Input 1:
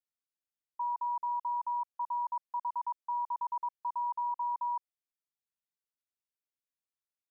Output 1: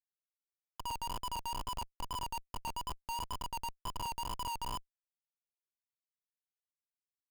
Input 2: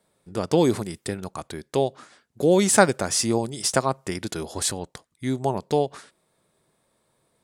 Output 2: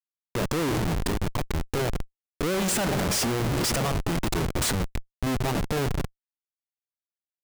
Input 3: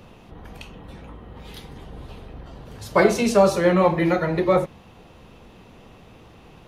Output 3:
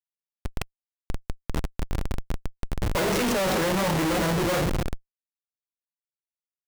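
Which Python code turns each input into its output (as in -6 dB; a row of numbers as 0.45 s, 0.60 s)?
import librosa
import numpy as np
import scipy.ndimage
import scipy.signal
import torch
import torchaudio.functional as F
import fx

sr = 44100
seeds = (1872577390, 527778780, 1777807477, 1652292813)

y = fx.wow_flutter(x, sr, seeds[0], rate_hz=2.1, depth_cents=72.0)
y = fx.room_shoebox(y, sr, seeds[1], volume_m3=2200.0, walls='mixed', distance_m=0.45)
y = fx.schmitt(y, sr, flips_db=-30.5)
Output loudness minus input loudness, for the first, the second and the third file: -5.5 LU, -3.5 LU, -7.5 LU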